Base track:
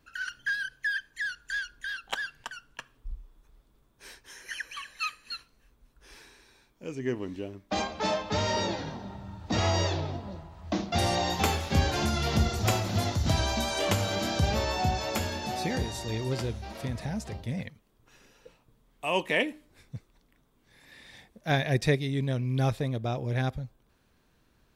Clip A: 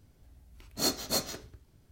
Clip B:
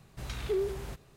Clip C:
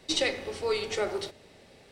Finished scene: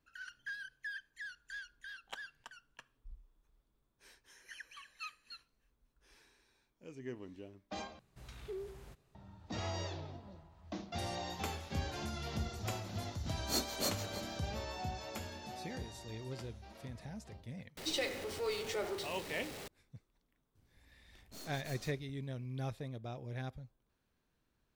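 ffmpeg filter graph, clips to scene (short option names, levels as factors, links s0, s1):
-filter_complex "[1:a]asplit=2[s0][s1];[0:a]volume=0.211[s2];[s0]asplit=2[s3][s4];[s4]adelay=314.9,volume=0.355,highshelf=f=4000:g=-7.08[s5];[s3][s5]amix=inputs=2:normalize=0[s6];[3:a]aeval=exprs='val(0)+0.5*0.0266*sgn(val(0))':c=same[s7];[s1]aeval=exprs='(tanh(141*val(0)+0.7)-tanh(0.7))/141':c=same[s8];[s2]asplit=2[s9][s10];[s9]atrim=end=7.994[s11];[2:a]atrim=end=1.16,asetpts=PTS-STARTPTS,volume=0.211[s12];[s10]atrim=start=9.146[s13];[s6]atrim=end=1.91,asetpts=PTS-STARTPTS,volume=0.473,afade=t=in:d=0.004:c=hsin,afade=t=out:st=1.906:d=0.004:c=hsin,adelay=12700[s14];[s7]atrim=end=1.91,asetpts=PTS-STARTPTS,volume=0.299,afade=t=in:d=0.004:c=hsin,afade=t=out:st=1.906:d=0.004:c=hsin,adelay=17770[s15];[s8]atrim=end=1.91,asetpts=PTS-STARTPTS,volume=0.473,afade=t=in:d=0.004:c=hsin,afade=t=out:st=1.906:d=0.004:c=hsin,adelay=20550[s16];[s11][s12]acrossfade=d=0.004:c1=hsin:c2=hsin[s17];[s17][s13]acrossfade=d=0.004:c1=hsin:c2=hsin[s18];[s18][s14][s15][s16]amix=inputs=4:normalize=0"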